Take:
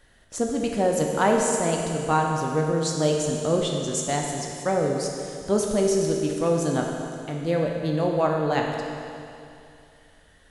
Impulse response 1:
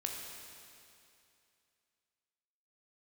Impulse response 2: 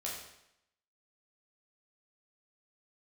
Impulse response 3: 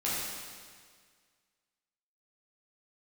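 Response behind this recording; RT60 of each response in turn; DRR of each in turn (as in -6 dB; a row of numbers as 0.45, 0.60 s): 1; 2.6, 0.80, 1.8 s; 0.0, -5.0, -9.0 dB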